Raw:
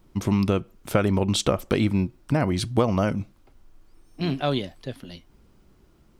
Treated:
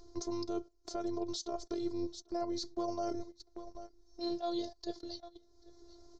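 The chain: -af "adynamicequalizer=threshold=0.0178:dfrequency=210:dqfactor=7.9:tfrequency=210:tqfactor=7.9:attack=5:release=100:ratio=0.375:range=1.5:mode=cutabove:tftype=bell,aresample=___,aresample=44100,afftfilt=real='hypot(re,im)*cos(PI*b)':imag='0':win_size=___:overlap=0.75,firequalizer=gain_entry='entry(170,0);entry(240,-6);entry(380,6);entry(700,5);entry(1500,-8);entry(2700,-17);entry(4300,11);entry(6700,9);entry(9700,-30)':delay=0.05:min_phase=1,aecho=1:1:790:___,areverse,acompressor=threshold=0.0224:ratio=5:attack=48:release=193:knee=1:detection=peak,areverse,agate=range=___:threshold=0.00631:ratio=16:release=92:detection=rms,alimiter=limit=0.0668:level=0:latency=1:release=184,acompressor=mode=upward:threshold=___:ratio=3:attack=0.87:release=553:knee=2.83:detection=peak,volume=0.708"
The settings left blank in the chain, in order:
22050, 512, 0.0708, 0.178, 0.0178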